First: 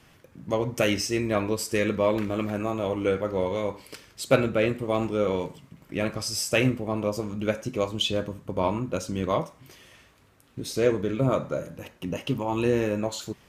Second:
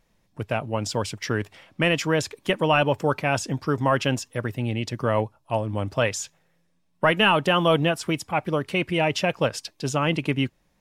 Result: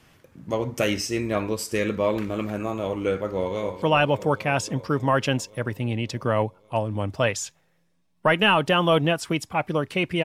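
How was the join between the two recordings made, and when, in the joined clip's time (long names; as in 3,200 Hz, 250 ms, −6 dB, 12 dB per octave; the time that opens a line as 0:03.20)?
first
0:03.28–0:03.82: delay throw 280 ms, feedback 80%, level −11.5 dB
0:03.82: continue with second from 0:02.60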